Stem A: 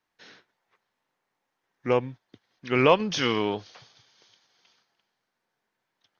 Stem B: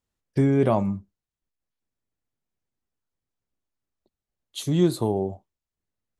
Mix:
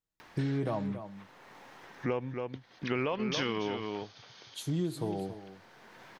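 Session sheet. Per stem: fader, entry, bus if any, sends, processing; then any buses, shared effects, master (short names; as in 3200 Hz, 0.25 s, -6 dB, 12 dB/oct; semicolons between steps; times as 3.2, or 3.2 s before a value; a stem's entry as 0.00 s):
+1.5 dB, 0.20 s, no send, echo send -11.5 dB, high shelf 6500 Hz -11.5 dB; limiter -15 dBFS, peak gain reduction 8.5 dB; upward compressor, threshold -32 dBFS; auto duck -10 dB, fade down 1.15 s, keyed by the second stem
-9.0 dB, 0.00 s, no send, echo send -14 dB, comb 6.3 ms, depth 50%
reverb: off
echo: echo 0.278 s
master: compressor 6:1, threshold -28 dBFS, peak gain reduction 9.5 dB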